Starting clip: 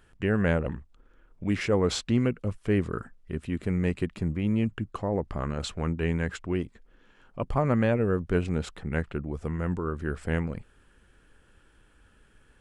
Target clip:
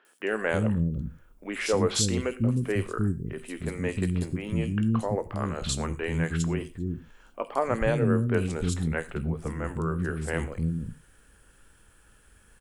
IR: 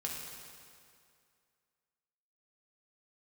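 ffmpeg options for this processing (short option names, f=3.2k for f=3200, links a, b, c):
-filter_complex "[0:a]aemphasis=mode=production:type=50fm,acrossover=split=300|3200[a][b][c];[c]adelay=50[d];[a]adelay=310[e];[e][b][d]amix=inputs=3:normalize=0,asplit=2[f][g];[1:a]atrim=start_sample=2205,afade=t=out:st=0.15:d=0.01,atrim=end_sample=7056,adelay=18[h];[g][h]afir=irnorm=-1:irlink=0,volume=-12dB[i];[f][i]amix=inputs=2:normalize=0,volume=1.5dB"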